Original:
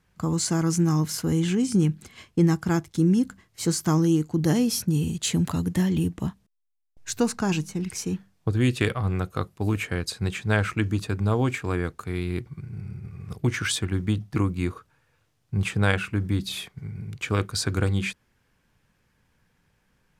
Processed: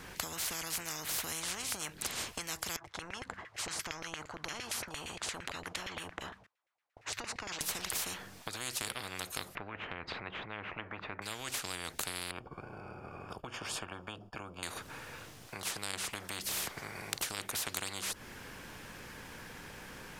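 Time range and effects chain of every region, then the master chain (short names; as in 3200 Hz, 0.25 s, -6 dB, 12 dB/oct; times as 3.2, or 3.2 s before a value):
2.76–7.61 LFO band-pass saw down 8.7 Hz 560–2300 Hz + compressor 2:1, threshold -48 dBFS + resonant low shelf 130 Hz +7 dB, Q 1.5
9.55–11.22 LPF 1700 Hz 24 dB/oct + upward compressor, threshold -26 dBFS
12.31–14.63 expander -45 dBFS + running mean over 22 samples
whole clip: compressor 5:1, threshold -34 dBFS; spectral compressor 10:1; gain +12 dB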